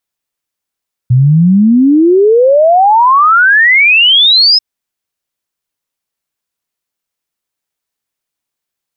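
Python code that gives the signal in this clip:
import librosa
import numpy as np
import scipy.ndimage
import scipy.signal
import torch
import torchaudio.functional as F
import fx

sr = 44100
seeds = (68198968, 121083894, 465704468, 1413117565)

y = fx.ess(sr, length_s=3.49, from_hz=120.0, to_hz=5200.0, level_db=-3.5)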